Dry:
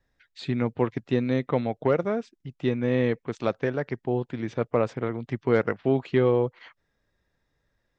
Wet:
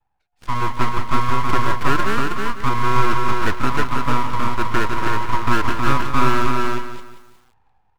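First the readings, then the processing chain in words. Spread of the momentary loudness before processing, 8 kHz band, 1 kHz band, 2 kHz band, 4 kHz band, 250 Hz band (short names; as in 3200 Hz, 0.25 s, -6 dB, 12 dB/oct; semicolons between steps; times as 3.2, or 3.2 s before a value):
8 LU, n/a, +16.5 dB, +12.5 dB, +13.5 dB, +1.5 dB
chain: LPF 1000 Hz 12 dB/oct; resonant low shelf 220 Hz +6.5 dB, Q 1.5; AGC gain up to 11.5 dB; in parallel at -9 dB: fuzz box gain 42 dB, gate -49 dBFS; on the sum: frequency shift +360 Hz; full-wave rectifier; on a send: echo 0.318 s -3.5 dB; on the sum: lo-fi delay 0.181 s, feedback 35%, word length 7-bit, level -10 dB; gain -4.5 dB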